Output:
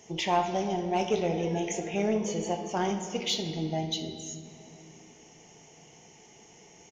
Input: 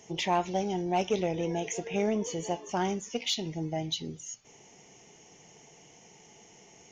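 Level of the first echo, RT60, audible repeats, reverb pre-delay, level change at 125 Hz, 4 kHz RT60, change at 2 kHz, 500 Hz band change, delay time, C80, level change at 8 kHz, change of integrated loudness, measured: -16.0 dB, 2.6 s, 1, 19 ms, +1.5 dB, 1.6 s, +1.0 dB, +1.5 dB, 64 ms, 9.0 dB, +0.5 dB, +1.5 dB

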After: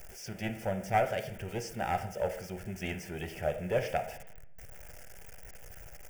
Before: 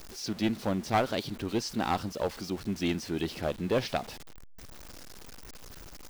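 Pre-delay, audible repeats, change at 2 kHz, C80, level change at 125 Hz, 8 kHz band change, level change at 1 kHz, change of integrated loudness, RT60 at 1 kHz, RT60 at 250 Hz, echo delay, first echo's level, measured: 3 ms, no echo, -0.5 dB, 13.5 dB, -2.0 dB, -4.5 dB, -1.0 dB, -3.0 dB, 0.60 s, 1.1 s, no echo, no echo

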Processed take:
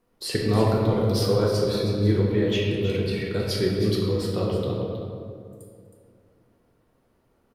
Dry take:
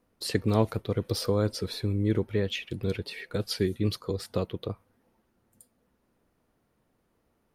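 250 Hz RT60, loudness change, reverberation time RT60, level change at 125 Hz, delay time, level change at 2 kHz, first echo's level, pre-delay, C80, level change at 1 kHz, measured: 2.8 s, +6.0 dB, 2.3 s, +6.0 dB, 318 ms, +4.5 dB, -10.0 dB, 3 ms, 1.0 dB, +6.0 dB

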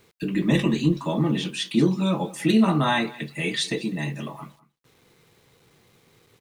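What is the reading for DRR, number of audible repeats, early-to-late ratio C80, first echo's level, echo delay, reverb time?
no reverb, 1, no reverb, -21.0 dB, 199 ms, no reverb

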